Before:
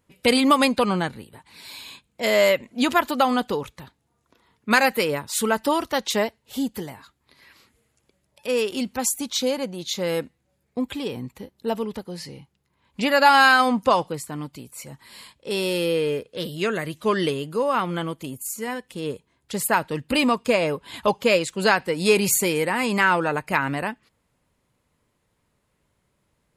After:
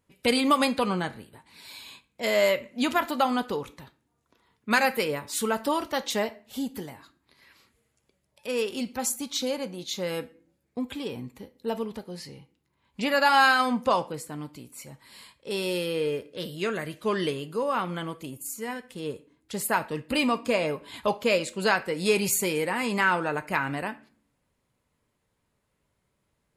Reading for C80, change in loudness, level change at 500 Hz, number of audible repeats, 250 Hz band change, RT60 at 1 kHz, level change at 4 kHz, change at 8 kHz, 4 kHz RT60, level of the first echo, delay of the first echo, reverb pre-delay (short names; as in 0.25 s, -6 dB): 22.5 dB, -4.5 dB, -5.0 dB, none, -5.0 dB, 0.40 s, -4.5 dB, -5.0 dB, 0.30 s, none, none, 5 ms